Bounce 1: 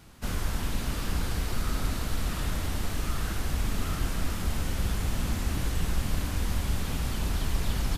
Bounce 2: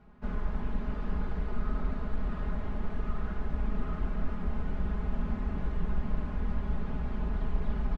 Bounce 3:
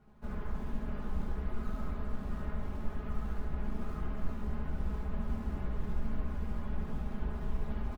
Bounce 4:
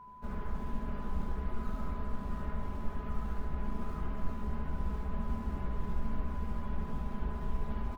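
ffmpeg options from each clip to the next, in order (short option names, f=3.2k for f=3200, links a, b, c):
-af "lowpass=1.3k,aecho=1:1:4.8:0.75,volume=-4.5dB"
-filter_complex "[0:a]asplit=2[a][b];[b]acrusher=samples=10:mix=1:aa=0.000001:lfo=1:lforange=16:lforate=1.9,volume=-11dB[c];[a][c]amix=inputs=2:normalize=0,aecho=1:1:14|72:0.562|0.708,volume=-8dB"
-af "aeval=exprs='val(0)+0.00355*sin(2*PI*1000*n/s)':c=same"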